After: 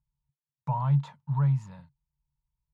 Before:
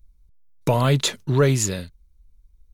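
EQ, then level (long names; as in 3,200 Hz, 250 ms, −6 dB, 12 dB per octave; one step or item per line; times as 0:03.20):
pair of resonant band-passes 360 Hz, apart 2.7 octaves
−2.0 dB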